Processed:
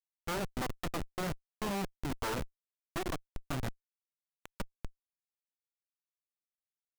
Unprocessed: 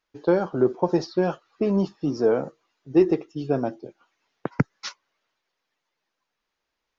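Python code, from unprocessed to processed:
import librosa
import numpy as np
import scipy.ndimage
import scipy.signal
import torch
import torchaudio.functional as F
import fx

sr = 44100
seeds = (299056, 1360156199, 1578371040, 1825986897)

y = fx.cheby_harmonics(x, sr, harmonics=(3, 4, 5, 7), levels_db=(-7, -19, -28, -30), full_scale_db=-6.5)
y = fx.schmitt(y, sr, flips_db=-35.5)
y = y * 10.0 ** (1.0 / 20.0)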